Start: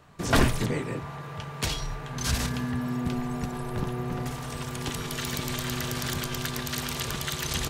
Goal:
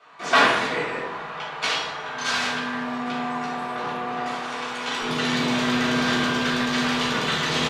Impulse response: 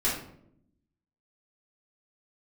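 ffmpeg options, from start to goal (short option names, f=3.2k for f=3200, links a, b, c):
-filter_complex "[0:a]asetnsamples=n=441:p=0,asendcmd='5.02 highpass f 290',highpass=700,lowpass=4k,asplit=5[a][b][c][d][e];[b]adelay=180,afreqshift=-44,volume=-20dB[f];[c]adelay=360,afreqshift=-88,volume=-26dB[g];[d]adelay=540,afreqshift=-132,volume=-32dB[h];[e]adelay=720,afreqshift=-176,volume=-38.1dB[i];[a][f][g][h][i]amix=inputs=5:normalize=0[j];[1:a]atrim=start_sample=2205,asetrate=28665,aresample=44100[k];[j][k]afir=irnorm=-1:irlink=0,volume=-1.5dB"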